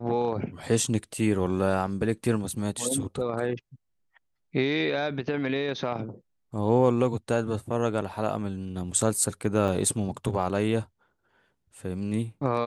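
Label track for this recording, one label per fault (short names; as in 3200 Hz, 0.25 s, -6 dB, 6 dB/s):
9.680000	9.680000	gap 2.3 ms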